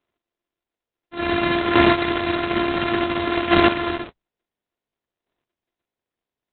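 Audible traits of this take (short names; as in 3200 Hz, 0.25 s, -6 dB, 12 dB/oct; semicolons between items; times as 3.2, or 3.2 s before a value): a buzz of ramps at a fixed pitch in blocks of 128 samples; chopped level 0.57 Hz, depth 65%, duty 10%; Opus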